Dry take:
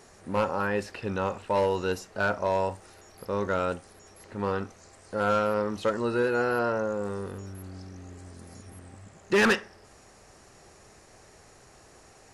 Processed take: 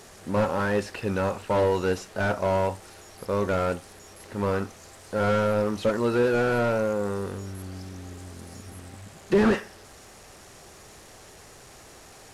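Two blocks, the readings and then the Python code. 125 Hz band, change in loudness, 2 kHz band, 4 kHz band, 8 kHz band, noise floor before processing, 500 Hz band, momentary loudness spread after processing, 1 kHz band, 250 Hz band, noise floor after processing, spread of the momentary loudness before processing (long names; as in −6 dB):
+6.0 dB, +2.0 dB, −1.5 dB, −0.5 dB, +2.5 dB, −55 dBFS, +3.0 dB, 19 LU, +0.5 dB, +4.5 dB, −49 dBFS, 20 LU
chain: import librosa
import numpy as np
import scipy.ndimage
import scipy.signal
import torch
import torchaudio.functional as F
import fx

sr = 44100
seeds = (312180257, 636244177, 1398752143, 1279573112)

y = fx.delta_mod(x, sr, bps=64000, step_db=-47.0)
y = y * librosa.db_to_amplitude(4.0)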